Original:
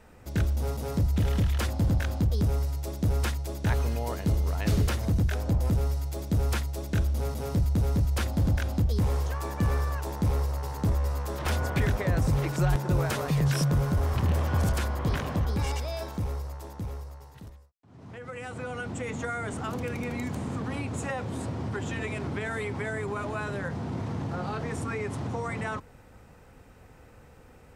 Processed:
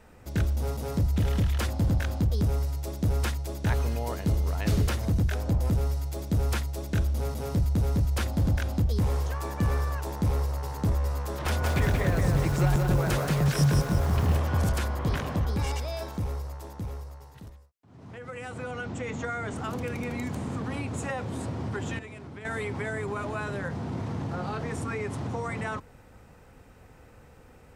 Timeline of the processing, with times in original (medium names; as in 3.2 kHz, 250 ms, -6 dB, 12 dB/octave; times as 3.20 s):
11.46–14.37 s: bit-crushed delay 178 ms, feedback 35%, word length 8-bit, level -3.5 dB
18.71–19.56 s: low-pass 7.3 kHz 24 dB/octave
21.99–22.45 s: gain -10 dB